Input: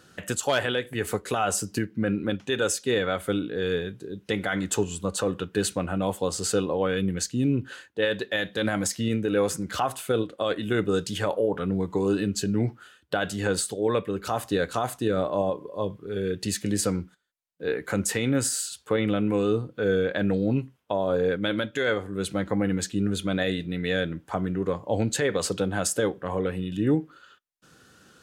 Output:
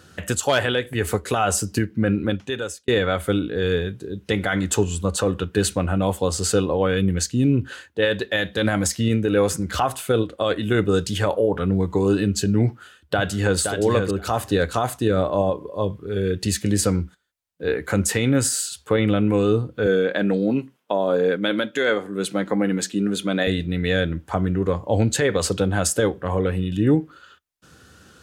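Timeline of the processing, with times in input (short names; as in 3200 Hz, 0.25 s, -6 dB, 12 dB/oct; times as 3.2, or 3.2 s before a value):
2.25–2.88 fade out
12.66–13.58 echo throw 0.52 s, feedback 10%, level -5.5 dB
19.86–23.47 HPF 180 Hz 24 dB/oct
whole clip: bell 74 Hz +11.5 dB 0.77 oct; gain +4.5 dB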